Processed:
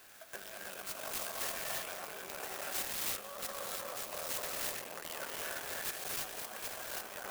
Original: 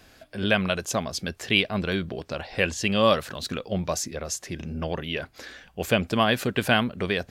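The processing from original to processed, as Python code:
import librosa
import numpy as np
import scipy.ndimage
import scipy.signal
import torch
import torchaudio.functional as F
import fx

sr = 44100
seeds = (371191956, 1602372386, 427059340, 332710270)

p1 = fx.octave_divider(x, sr, octaves=2, level_db=-1.0)
p2 = p1 + fx.echo_wet_lowpass(p1, sr, ms=243, feedback_pct=45, hz=1300.0, wet_db=-7.5, dry=0)
p3 = fx.over_compress(p2, sr, threshold_db=-33.0, ratio=-1.0)
p4 = fx.high_shelf(p3, sr, hz=7800.0, db=7.0)
p5 = fx.rev_gated(p4, sr, seeds[0], gate_ms=360, shape='rising', drr_db=-2.5)
p6 = fx.tube_stage(p5, sr, drive_db=25.0, bias=0.65)
p7 = scipy.signal.sosfilt(scipy.signal.butter(2, 780.0, 'highpass', fs=sr, output='sos'), p6)
p8 = fx.clock_jitter(p7, sr, seeds[1], jitter_ms=0.071)
y = p8 * librosa.db_to_amplitude(-4.5)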